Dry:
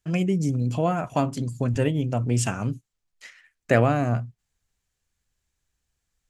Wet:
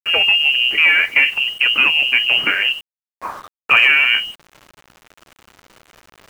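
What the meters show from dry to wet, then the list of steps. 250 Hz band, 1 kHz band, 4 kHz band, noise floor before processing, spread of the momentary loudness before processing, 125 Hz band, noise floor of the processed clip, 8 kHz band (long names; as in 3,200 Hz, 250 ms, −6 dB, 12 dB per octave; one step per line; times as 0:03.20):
−14.5 dB, +3.0 dB, +29.5 dB, −80 dBFS, 9 LU, below −20 dB, below −85 dBFS, can't be measured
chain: high-pass filter 51 Hz 24 dB per octave
in parallel at −2.5 dB: brickwall limiter −15.5 dBFS, peak gain reduction 10.5 dB
on the sum: mid-hump overdrive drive 20 dB, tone 2,100 Hz, clips at −2.5 dBFS
voice inversion scrambler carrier 3,000 Hz
spectral tilt +3 dB per octave
reversed playback
upward compression, threshold −22 dBFS
reversed playback
bit-depth reduction 6 bits, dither none
high-shelf EQ 2,200 Hz −11 dB
level +3 dB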